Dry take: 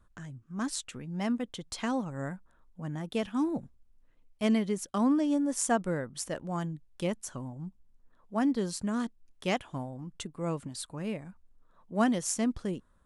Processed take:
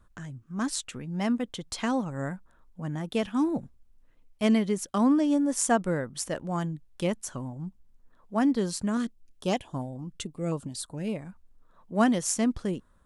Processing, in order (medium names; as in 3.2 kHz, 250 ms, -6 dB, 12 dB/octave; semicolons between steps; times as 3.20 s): 8.97–11.16 s: step-sequenced notch 7.1 Hz 850–2400 Hz; trim +3.5 dB